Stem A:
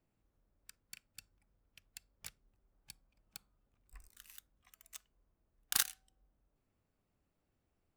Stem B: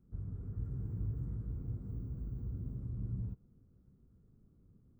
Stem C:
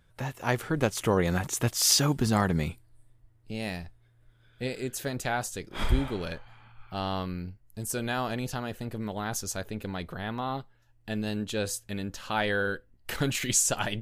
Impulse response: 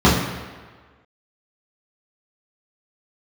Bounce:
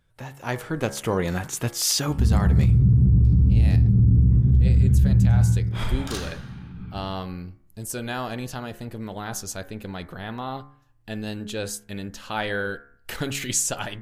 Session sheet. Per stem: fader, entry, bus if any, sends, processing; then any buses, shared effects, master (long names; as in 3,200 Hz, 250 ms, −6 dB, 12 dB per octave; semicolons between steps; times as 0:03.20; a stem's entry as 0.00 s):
−7.5 dB, 0.35 s, send −15 dB, low-pass filter 8,700 Hz 12 dB per octave; leveller curve on the samples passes 1
−0.5 dB, 2.05 s, send −12.5 dB, spectral tilt −1.5 dB per octave
−3.0 dB, 0.00 s, no send, hum removal 69.75 Hz, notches 33; automatic gain control gain up to 4 dB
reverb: on, RT60 1.5 s, pre-delay 3 ms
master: brickwall limiter −10.5 dBFS, peak gain reduction 11 dB